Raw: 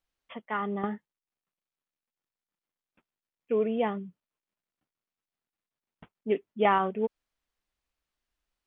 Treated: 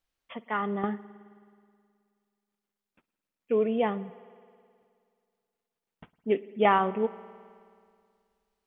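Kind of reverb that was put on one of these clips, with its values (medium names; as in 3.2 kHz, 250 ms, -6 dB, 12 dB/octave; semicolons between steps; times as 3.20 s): spring tank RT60 2.2 s, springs 53 ms, chirp 45 ms, DRR 17 dB; trim +1.5 dB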